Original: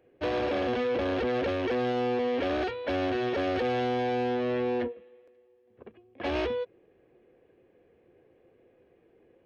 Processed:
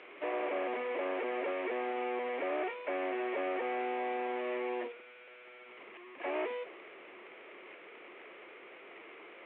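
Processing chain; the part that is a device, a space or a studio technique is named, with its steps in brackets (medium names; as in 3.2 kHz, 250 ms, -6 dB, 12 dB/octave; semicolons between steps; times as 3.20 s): digital answering machine (band-pass 340–3000 Hz; one-bit delta coder 16 kbps, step -38 dBFS; cabinet simulation 430–3900 Hz, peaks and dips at 500 Hz -9 dB, 780 Hz -4 dB, 1.5 kHz -6 dB, 2.2 kHz +7 dB); dynamic bell 480 Hz, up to +7 dB, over -50 dBFS, Q 0.71; trim -4 dB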